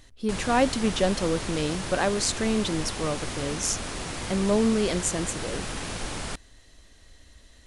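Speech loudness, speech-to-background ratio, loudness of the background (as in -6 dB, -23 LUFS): -27.0 LUFS, 6.5 dB, -33.5 LUFS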